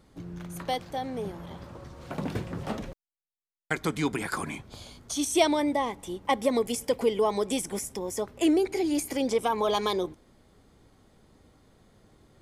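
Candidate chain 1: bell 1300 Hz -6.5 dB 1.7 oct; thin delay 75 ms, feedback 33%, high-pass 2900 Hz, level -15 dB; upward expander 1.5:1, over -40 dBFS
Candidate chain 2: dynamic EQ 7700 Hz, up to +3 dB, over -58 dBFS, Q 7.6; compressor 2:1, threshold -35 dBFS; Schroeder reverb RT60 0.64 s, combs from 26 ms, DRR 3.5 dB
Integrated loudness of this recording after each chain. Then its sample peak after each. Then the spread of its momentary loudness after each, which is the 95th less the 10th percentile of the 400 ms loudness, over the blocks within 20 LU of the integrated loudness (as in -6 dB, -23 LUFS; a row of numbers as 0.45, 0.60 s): -32.5, -34.0 LUFS; -11.0, -17.5 dBFS; 17, 12 LU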